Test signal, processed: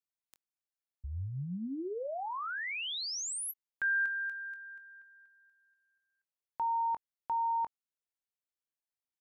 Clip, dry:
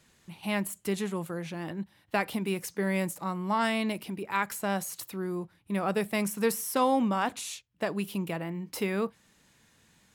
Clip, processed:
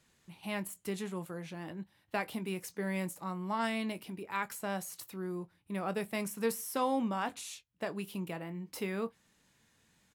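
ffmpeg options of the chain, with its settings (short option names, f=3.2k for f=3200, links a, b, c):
-filter_complex "[0:a]asplit=2[a][b];[b]adelay=22,volume=-13dB[c];[a][c]amix=inputs=2:normalize=0,volume=-6.5dB"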